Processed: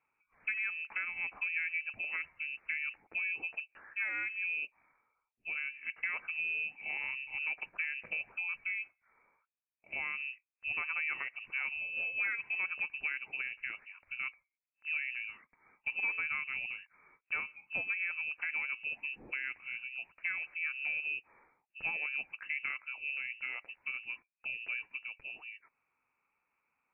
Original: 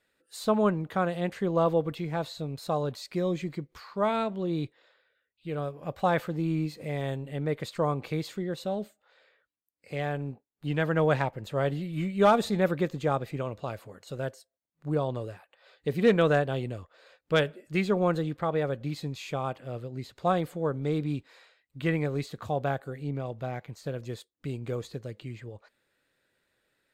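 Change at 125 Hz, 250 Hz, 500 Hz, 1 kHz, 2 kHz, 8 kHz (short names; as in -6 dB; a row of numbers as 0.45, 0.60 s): under -35 dB, under -30 dB, -33.0 dB, -19.5 dB, +5.0 dB, under -30 dB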